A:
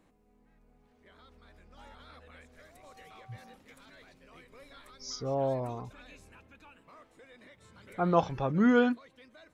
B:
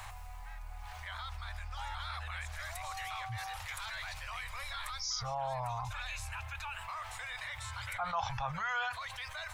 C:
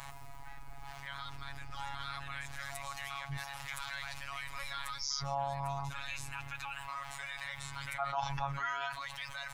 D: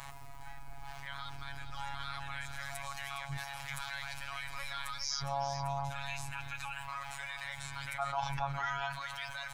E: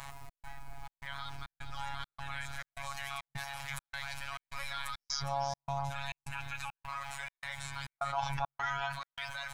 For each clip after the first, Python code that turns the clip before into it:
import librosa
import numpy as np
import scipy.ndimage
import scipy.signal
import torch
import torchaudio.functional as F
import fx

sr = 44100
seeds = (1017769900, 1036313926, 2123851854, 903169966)

y1 = scipy.signal.sosfilt(scipy.signal.cheby1(3, 1.0, [100.0, 820.0], 'bandstop', fs=sr, output='sos'), x)
y1 = fx.env_flatten(y1, sr, amount_pct=70)
y1 = y1 * librosa.db_to_amplitude(-6.0)
y2 = fx.octave_divider(y1, sr, octaves=2, level_db=-6.0)
y2 = fx.robotise(y2, sr, hz=139.0)
y2 = y2 * librosa.db_to_amplitude(2.0)
y3 = y2 + 10.0 ** (-10.0 / 20.0) * np.pad(y2, (int(411 * sr / 1000.0), 0))[:len(y2)]
y4 = fx.step_gate(y3, sr, bpm=103, pattern='xx.xxx.x', floor_db=-60.0, edge_ms=4.5)
y4 = y4 * librosa.db_to_amplitude(1.0)